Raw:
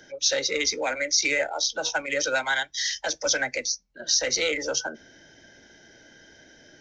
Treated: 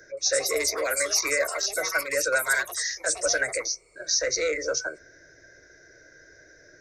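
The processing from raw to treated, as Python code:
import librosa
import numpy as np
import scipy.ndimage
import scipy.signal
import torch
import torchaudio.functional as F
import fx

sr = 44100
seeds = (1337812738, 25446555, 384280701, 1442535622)

y = fx.echo_pitch(x, sr, ms=173, semitones=6, count=2, db_per_echo=-6.0)
y = fx.fixed_phaser(y, sr, hz=840.0, stages=6)
y = F.gain(torch.from_numpy(y), 2.0).numpy()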